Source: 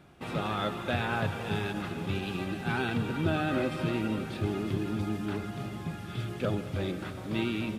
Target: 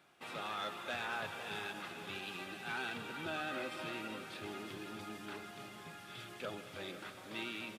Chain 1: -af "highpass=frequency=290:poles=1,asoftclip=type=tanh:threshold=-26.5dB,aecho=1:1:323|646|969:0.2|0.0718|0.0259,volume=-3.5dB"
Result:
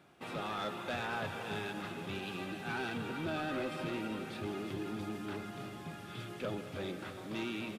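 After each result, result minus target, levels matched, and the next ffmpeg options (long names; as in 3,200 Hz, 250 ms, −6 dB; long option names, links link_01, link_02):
echo 177 ms early; 250 Hz band +5.0 dB
-af "highpass=frequency=290:poles=1,asoftclip=type=tanh:threshold=-26.5dB,aecho=1:1:500|1000|1500:0.2|0.0718|0.0259,volume=-3.5dB"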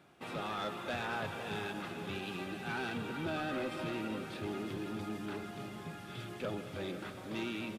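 250 Hz band +5.0 dB
-af "highpass=frequency=1100:poles=1,asoftclip=type=tanh:threshold=-26.5dB,aecho=1:1:500|1000|1500:0.2|0.0718|0.0259,volume=-3.5dB"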